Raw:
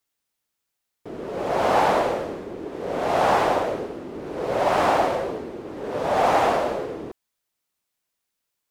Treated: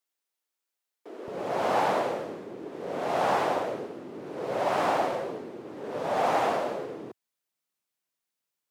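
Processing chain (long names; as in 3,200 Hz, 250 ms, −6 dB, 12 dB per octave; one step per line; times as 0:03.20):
high-pass filter 300 Hz 24 dB per octave, from 0:01.28 110 Hz
level −6 dB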